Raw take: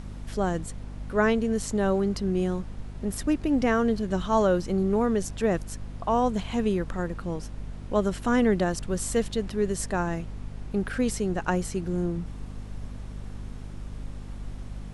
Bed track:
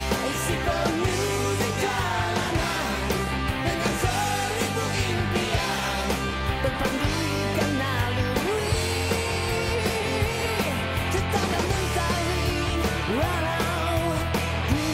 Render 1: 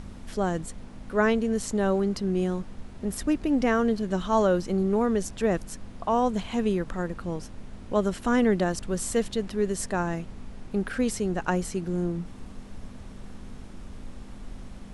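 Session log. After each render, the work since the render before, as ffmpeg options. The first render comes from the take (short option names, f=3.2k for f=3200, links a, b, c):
-af "bandreject=f=50:t=h:w=4,bandreject=f=100:t=h:w=4,bandreject=f=150:t=h:w=4"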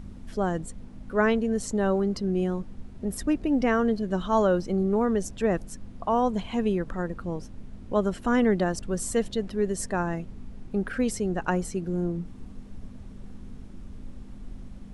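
-af "afftdn=nr=8:nf=-43"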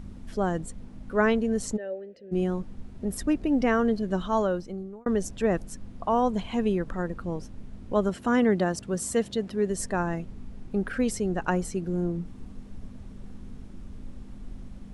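-filter_complex "[0:a]asplit=3[a][b][c];[a]afade=t=out:st=1.76:d=0.02[d];[b]asplit=3[e][f][g];[e]bandpass=f=530:t=q:w=8,volume=0dB[h];[f]bandpass=f=1.84k:t=q:w=8,volume=-6dB[i];[g]bandpass=f=2.48k:t=q:w=8,volume=-9dB[j];[h][i][j]amix=inputs=3:normalize=0,afade=t=in:st=1.76:d=0.02,afade=t=out:st=2.31:d=0.02[k];[c]afade=t=in:st=2.31:d=0.02[l];[d][k][l]amix=inputs=3:normalize=0,asettb=1/sr,asplit=3[m][n][o];[m]atrim=end=8.094[p];[n]atrim=start=8.09:end=9.7,asetpts=PTS-STARTPTS,afade=t=in:d=0.004:c=qsin,afade=t=out:st=1.606:d=0.004:c=qsin,highpass=75[q];[o]atrim=start=9.696[r];[p][q]acrossfade=d=0.004:c1=hsin:c2=qsin[s];[s][r]acrossfade=d=0.004:c1=qsin:c2=hsin,asplit=2[t][u];[t]atrim=end=5.06,asetpts=PTS-STARTPTS,afade=t=out:st=4.14:d=0.92[v];[u]atrim=start=5.06,asetpts=PTS-STARTPTS,afade=t=in:d=0.004:c=hsin[w];[v][w]concat=n=2:v=0:a=1"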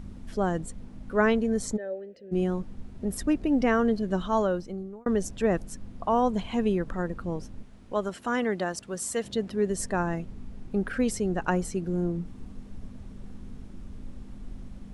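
-filter_complex "[0:a]asettb=1/sr,asplit=3[a][b][c];[a]atrim=end=1.444[d];[b]atrim=start=1.44:end=1.93,asetpts=PTS-STARTPTS,afade=t=in:d=0.004:c=qsin,afade=t=out:st=0.486:d=0.004:c=qsin,asuperstop=centerf=2800:order=12:qfactor=6.9[e];[c]atrim=start=1.926[f];[d][e]acrossfade=d=0.004:c1=hsin:c2=qsin[g];[g][f]acrossfade=d=0.004:c1=qsin:c2=hsin,asettb=1/sr,asplit=3[h][i][j];[h]atrim=end=7.634[k];[i]atrim=start=7.63:end=9.24,asetpts=PTS-STARTPTS,afade=t=in:d=0.004:c=qsin,afade=t=out:st=1.606:d=0.004:c=qsin,lowshelf=f=400:g=-10[l];[j]atrim=start=9.236[m];[k][l]acrossfade=d=0.004:c1=hsin:c2=qsin[n];[n][m]acrossfade=d=0.004:c1=qsin:c2=hsin"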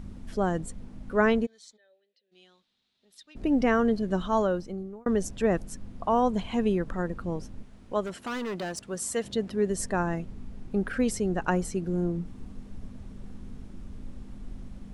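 -filter_complex "[0:a]asplit=3[a][b][c];[a]afade=t=out:st=1.45:d=0.02[d];[b]bandpass=f=3.8k:t=q:w=4.8,afade=t=in:st=1.45:d=0.02,afade=t=out:st=3.35:d=0.02[e];[c]afade=t=in:st=3.35:d=0.02[f];[d][e][f]amix=inputs=3:normalize=0,asettb=1/sr,asplit=3[g][h][i];[g]atrim=end=8.034[j];[h]atrim=start=8.03:end=8.79,asetpts=PTS-STARTPTS,afade=t=in:d=0.004:c=qsin,afade=t=out:st=0.756:d=0.004:c=qsin,volume=30dB,asoftclip=hard,volume=-30dB[k];[i]atrim=start=8.786[l];[j][k]acrossfade=d=0.004:c1=hsin:c2=qsin[m];[m][l]acrossfade=d=0.004:c1=qsin:c2=hsin"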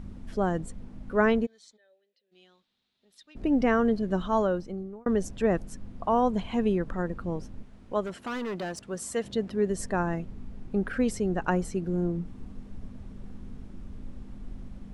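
-af "highshelf=f=4.3k:g=-6"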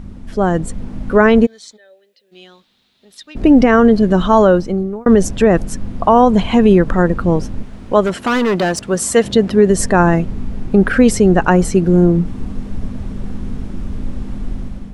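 -af "dynaudnorm=f=240:g=5:m=9dB,alimiter=level_in=9dB:limit=-1dB:release=50:level=0:latency=1"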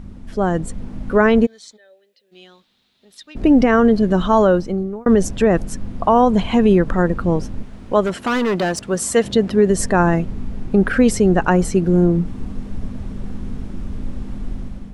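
-af "volume=-3.5dB"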